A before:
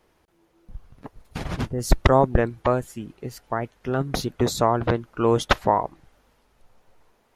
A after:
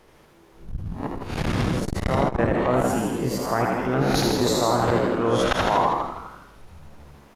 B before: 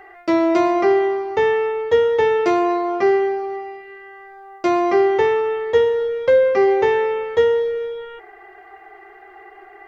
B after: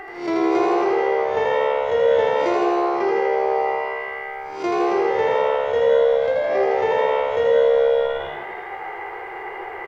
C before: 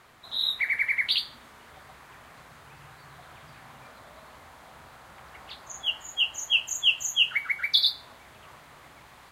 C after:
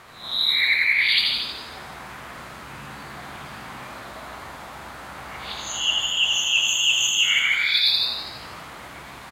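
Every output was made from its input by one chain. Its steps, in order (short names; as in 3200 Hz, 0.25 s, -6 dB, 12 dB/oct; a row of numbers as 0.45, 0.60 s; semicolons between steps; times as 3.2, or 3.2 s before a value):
spectral swells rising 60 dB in 0.36 s; reverse; compressor 6:1, threshold -26 dBFS; reverse; high shelf 11000 Hz -3 dB; on a send: frequency-shifting echo 81 ms, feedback 59%, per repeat +69 Hz, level -3.5 dB; on the sum: non-linear reverb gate 0.18 s rising, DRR 6.5 dB; core saturation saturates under 320 Hz; normalise peaks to -6 dBFS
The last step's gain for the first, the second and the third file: +7.0, +6.5, +7.0 dB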